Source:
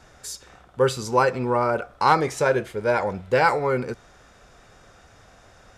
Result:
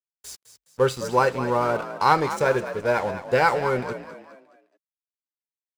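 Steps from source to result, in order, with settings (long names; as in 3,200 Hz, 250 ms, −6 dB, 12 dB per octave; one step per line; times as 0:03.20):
dead-zone distortion −38 dBFS
echo with shifted repeats 209 ms, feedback 42%, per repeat +45 Hz, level −12 dB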